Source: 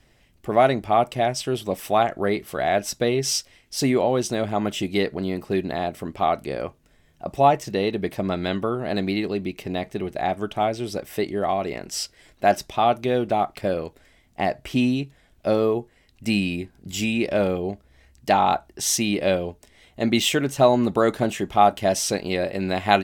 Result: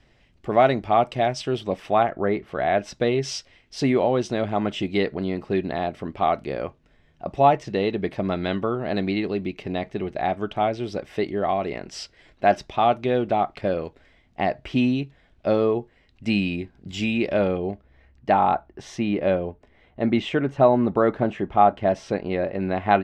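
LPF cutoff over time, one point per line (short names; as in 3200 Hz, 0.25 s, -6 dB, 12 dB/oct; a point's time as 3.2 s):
1.48 s 4800 Hz
2.28 s 1900 Hz
3.1 s 3800 Hz
17.28 s 3800 Hz
18.42 s 1800 Hz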